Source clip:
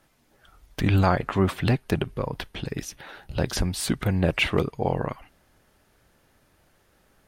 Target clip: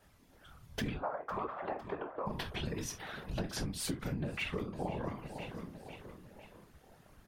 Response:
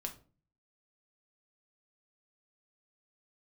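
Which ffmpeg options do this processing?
-filter_complex "[0:a]asplit=3[link_01][link_02][link_03];[link_01]afade=type=out:start_time=0.93:duration=0.02[link_04];[link_02]asuperpass=centerf=810:order=4:qfactor=1,afade=type=in:start_time=0.93:duration=0.02,afade=type=out:start_time=2.25:duration=0.02[link_05];[link_03]afade=type=in:start_time=2.25:duration=0.02[link_06];[link_04][link_05][link_06]amix=inputs=3:normalize=0,aecho=1:1:504|1008|1512|2016:0.126|0.0642|0.0327|0.0167[link_07];[1:a]atrim=start_sample=2205,atrim=end_sample=3528[link_08];[link_07][link_08]afir=irnorm=-1:irlink=0,afftfilt=real='hypot(re,im)*cos(2*PI*random(0))':imag='hypot(re,im)*sin(2*PI*random(1))':win_size=512:overlap=0.75,acompressor=threshold=-39dB:ratio=12,volume=5.5dB"

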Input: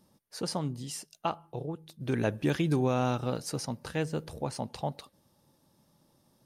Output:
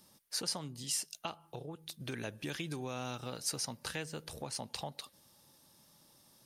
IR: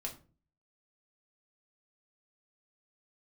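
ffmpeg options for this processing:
-filter_complex "[0:a]acrossover=split=570|2600[link_01][link_02][link_03];[link_02]alimiter=level_in=2.5dB:limit=-24dB:level=0:latency=1:release=371,volume=-2.5dB[link_04];[link_01][link_04][link_03]amix=inputs=3:normalize=0,acompressor=threshold=-41dB:ratio=2.5,tiltshelf=frequency=1200:gain=-6.5,volume=3dB"

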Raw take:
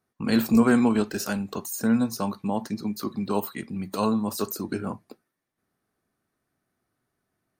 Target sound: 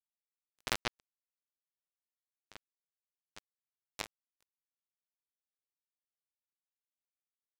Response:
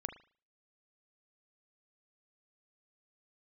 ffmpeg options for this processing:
-filter_complex "[0:a]adynamicsmooth=sensitivity=7.5:basefreq=1400,equalizer=frequency=1700:width_type=o:width=0.99:gain=-9,aecho=1:1:394:0.562,asplit=2[link_01][link_02];[1:a]atrim=start_sample=2205,adelay=37[link_03];[link_02][link_03]afir=irnorm=-1:irlink=0,volume=-8dB[link_04];[link_01][link_04]amix=inputs=2:normalize=0,aeval=exprs='0.447*(cos(1*acos(clip(val(0)/0.447,-1,1)))-cos(1*PI/2))+0.0891*(cos(2*acos(clip(val(0)/0.447,-1,1)))-cos(2*PI/2))+0.0251*(cos(4*acos(clip(val(0)/0.447,-1,1)))-cos(4*PI/2))+0.0224*(cos(8*acos(clip(val(0)/0.447,-1,1)))-cos(8*PI/2))':channel_layout=same,afreqshift=-100,highpass=550,highshelf=frequency=3100:gain=-5.5,acrusher=bits=2:mix=0:aa=0.5,dynaudnorm=framelen=170:gausssize=7:maxgain=13dB,volume=6.5dB"

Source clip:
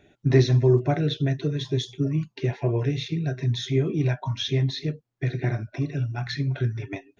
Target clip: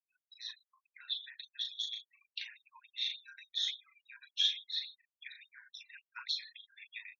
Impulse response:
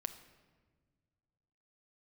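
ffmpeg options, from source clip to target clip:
-filter_complex "[0:a]aeval=exprs='if(lt(val(0),0),0.708*val(0),val(0))':channel_layout=same,alimiter=limit=-17.5dB:level=0:latency=1:release=496,asplit=2[link_01][link_02];[link_02]adelay=122.4,volume=-12dB,highshelf=frequency=4000:gain=-2.76[link_03];[link_01][link_03]amix=inputs=2:normalize=0,acompressor=threshold=-36dB:ratio=12,afftfilt=real='re*gte(hypot(re,im),0.00282)':imag='im*gte(hypot(re,im),0.00282)':win_size=1024:overlap=0.75,equalizer=frequency=3600:width_type=o:width=0.52:gain=8,asplit=2[link_04][link_05];[link_05]aecho=0:1:21|37:0.141|0.531[link_06];[link_04][link_06]amix=inputs=2:normalize=0,afftfilt=real='re*gte(b*sr/1024,880*pow(3300/880,0.5+0.5*sin(2*PI*3.5*pts/sr)))':imag='im*gte(b*sr/1024,880*pow(3300/880,0.5+0.5*sin(2*PI*3.5*pts/sr)))':win_size=1024:overlap=0.75,volume=4dB"

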